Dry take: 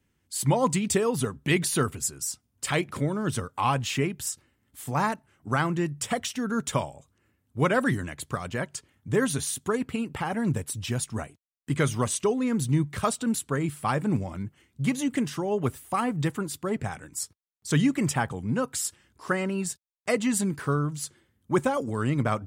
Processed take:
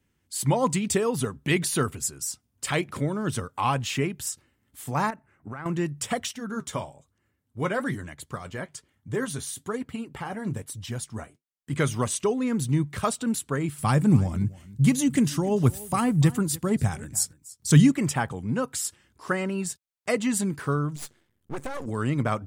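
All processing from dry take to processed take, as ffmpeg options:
-filter_complex "[0:a]asettb=1/sr,asplit=3[a][b][c];[a]atrim=end=5.104[d];[b]atrim=start=5.1:end=5.66,asetpts=PTS-STARTPTS,afade=t=in:d=0.004:c=qsin,afade=t=out:st=0.556:d=0.004:c=qsin,highshelf=f=2.8k:t=q:w=1.5:g=-8.5,bandreject=f=3.1k:w=8.5,acompressor=threshold=-32dB:ratio=12:attack=3.2:release=140:knee=1:detection=peak[e];[c]atrim=start=5.656[f];[d][e]acrossfade=d=0.004:c1=hsin:c2=qsin[g];[g][f]acrossfade=d=0.004:c1=qsin:c2=hsin,asettb=1/sr,asplit=3[h][i][j];[h]atrim=end=6.314[k];[i]atrim=start=6.31:end=11.73,asetpts=PTS-STARTPTS,afade=t=in:d=0.004:c=qsin,afade=t=out:st=5.416:d=0.004:c=qsin,bandreject=f=2.6k:w=14,flanger=delay=1:depth=9.9:regen=-59:speed=1.1:shape=sinusoidal[l];[j]atrim=start=11.726[m];[k][l]acrossfade=d=0.004:c1=hsin:c2=qsin[n];[n][m]acrossfade=d=0.004:c1=qsin:c2=hsin,asettb=1/sr,asplit=3[o][p][q];[o]atrim=end=13.784[r];[p]atrim=start=13.78:end=17.92,asetpts=PTS-STARTPTS,afade=t=in:d=0.004:c=qsin,afade=t=out:st=4.136:d=0.004:c=qsin,bass=f=250:g=10,treble=f=4k:g=8,aecho=1:1:292:0.106,atrim=end_sample=182574[s];[q]atrim=start=17.916[t];[r][s]acrossfade=d=0.004:c1=hsin:c2=qsin[u];[u][t]acrossfade=d=0.004:c1=qsin:c2=hsin,asettb=1/sr,asplit=3[v][w][x];[v]atrim=end=20.964[y];[w]atrim=start=20.96:end=21.86,asetpts=PTS-STARTPTS,afade=t=in:d=0.004:c=qsin,afade=t=out:st=0.896:d=0.004:c=qsin,aeval=exprs='max(val(0),0)':c=same,acompressor=threshold=-27dB:ratio=4:attack=3.2:release=140:knee=1:detection=peak[z];[x]atrim=start=21.856[aa];[y][z]acrossfade=d=0.004:c1=hsin:c2=qsin[ab];[ab][aa]acrossfade=d=0.004:c1=qsin:c2=hsin"

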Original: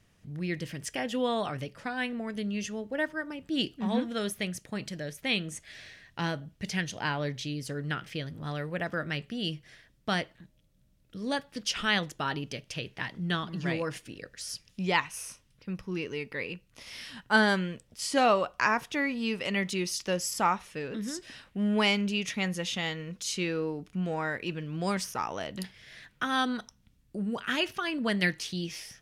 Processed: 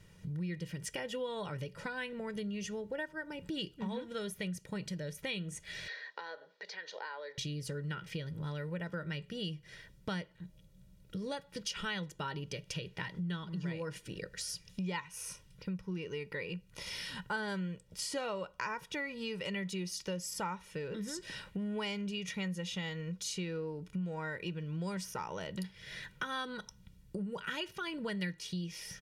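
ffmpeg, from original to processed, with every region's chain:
-filter_complex "[0:a]asettb=1/sr,asplit=3[a][b][c];[a]atrim=end=5.884[d];[b]atrim=start=5.88:end=7.38,asetpts=PTS-STARTPTS,afade=t=in:d=0.004:c=qsin,afade=t=out:st=1.496:d=0.004:c=qsin,acompressor=threshold=-43dB:ratio=12:attack=3.2:release=140:knee=1:detection=peak,highpass=f=450:w=0.5412,highpass=f=450:w=1.3066,equalizer=f=470:t=q:w=4:g=5,equalizer=f=770:t=q:w=4:g=4,equalizer=f=1.1k:t=q:w=4:g=3,equalizer=f=1.7k:t=q:w=4:g=7,equalizer=f=2.8k:t=q:w=4:g=-7,equalizer=f=4.2k:t=q:w=4:g=6,lowpass=f=5k:w=0.5412,lowpass=f=5k:w=1.3066[e];[c]atrim=start=7.376[f];[d][e]acrossfade=d=0.004:c1=hsin:c2=qsin[g];[g][f]acrossfade=d=0.004:c1=qsin:c2=hsin,equalizer=f=180:w=2.8:g=12.5,aecho=1:1:2.1:0.66,acompressor=threshold=-41dB:ratio=4,volume=2.5dB"

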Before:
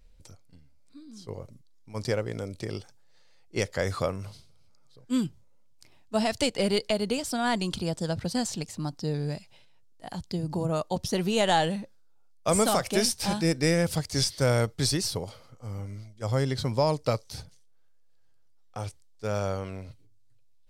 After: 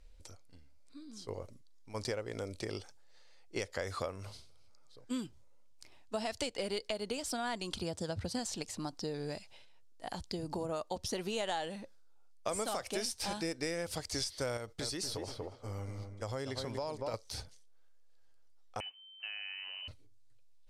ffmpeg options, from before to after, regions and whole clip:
-filter_complex "[0:a]asettb=1/sr,asplit=3[a][b][c];[a]atrim=end=7.824[d];[b]atrim=start=7.82:end=8.39,asetpts=PTS-STARTPTS,afade=t=in:d=0.004:c=qsin,afade=t=out:st=0.566:d=0.004:c=qsin,highpass=55,equalizer=f=88:w=0.8:g=11[e];[c]atrim=start=8.386[f];[d][e]acrossfade=d=0.004:c1=hsin:c2=qsin[g];[g][f]acrossfade=d=0.004:c1=qsin:c2=hsin,asettb=1/sr,asplit=3[h][i][j];[h]atrim=end=14.574[k];[i]atrim=start=14.57:end=17.14,asetpts=PTS-STARTPTS,afade=t=in:d=0.004:c=qsin,afade=t=out:st=2.566:d=0.004:c=qsin,agate=range=-6dB:threshold=-45dB:ratio=16:release=100:detection=peak,asplit=2[l][m];[m]adelay=238,lowpass=f=1.4k:p=1,volume=-6dB,asplit=2[n][o];[o]adelay=238,lowpass=f=1.4k:p=1,volume=0.28,asplit=2[p][q];[q]adelay=238,lowpass=f=1.4k:p=1,volume=0.28,asplit=2[r][s];[s]adelay=238,lowpass=f=1.4k:p=1,volume=0.28[t];[l][n][p][r][t]amix=inputs=5:normalize=0,atrim=end_sample=113337,acompressor=threshold=-31dB:ratio=2.5:attack=3.2:release=140:knee=1:detection=peak[u];[j]atrim=start=17.136[v];[k][u]acrossfade=d=0.004:c1=hsin:c2=qsin[w];[w][v]acrossfade=d=0.004:c1=qsin:c2=hsin,asettb=1/sr,asplit=3[x][y][z];[x]atrim=end=18.804[aa];[y]atrim=start=18.8:end=19.88,asetpts=PTS-STARTPTS,afade=t=in:d=0.004:c=qsin,afade=t=out:st=1.076:d=0.004:c=qsin,acompressor=threshold=-39dB:ratio=8:attack=3.2:release=140:knee=1:detection=peak,lowpass=f=2.6k:t=q:w=0.5098,lowpass=f=2.6k:t=q:w=0.6013,lowpass=f=2.6k:t=q:w=0.9,lowpass=f=2.6k:t=q:w=2.563,afreqshift=-3100[ab];[z]atrim=start=19.876[ac];[aa][ab]acrossfade=d=0.004:c1=hsin:c2=qsin[ad];[ad][ac]acrossfade=d=0.004:c1=qsin:c2=hsin,lowpass=12k,equalizer=f=150:w=1.3:g=-11.5,acompressor=threshold=-35dB:ratio=4"

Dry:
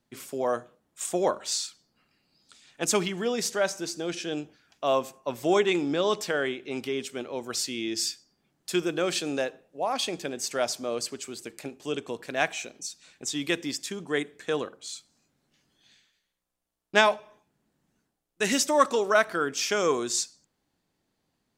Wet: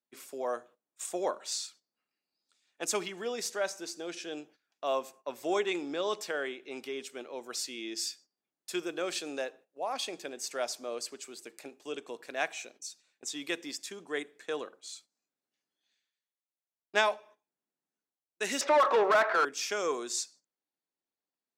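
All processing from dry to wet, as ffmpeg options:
-filter_complex "[0:a]asettb=1/sr,asplit=3[a][b][c];[a]atrim=end=18.614[d];[b]atrim=start=18.61:end=19.45,asetpts=PTS-STARTPTS,afade=t=in:d=0.004:c=qsin,afade=t=out:st=0.836:d=0.004:c=qsin,highpass=490,lowpass=2.6k,asplit=2[e][f];[f]highpass=f=720:p=1,volume=30dB,asoftclip=type=tanh:threshold=-8dB[g];[e][g]amix=inputs=2:normalize=0,lowpass=f=1.1k:p=1,volume=-6dB[h];[c]atrim=start=19.446[i];[d][h]acrossfade=d=0.004:c1=hsin:c2=qsin[j];[j][i]acrossfade=d=0.004:c1=qsin:c2=hsin,agate=range=-12dB:threshold=-48dB:ratio=16:detection=peak,highpass=320,bandreject=f=3.1k:w=23,volume=-6dB"

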